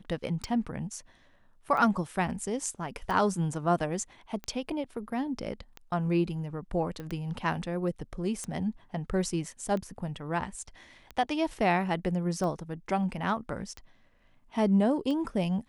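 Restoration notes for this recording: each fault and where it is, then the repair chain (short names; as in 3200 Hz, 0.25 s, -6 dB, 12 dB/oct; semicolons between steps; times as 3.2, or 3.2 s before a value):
tick 45 rpm
7 pop -27 dBFS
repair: de-click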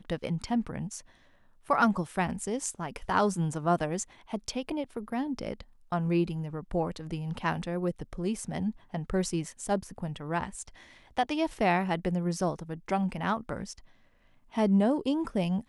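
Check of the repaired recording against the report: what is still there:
none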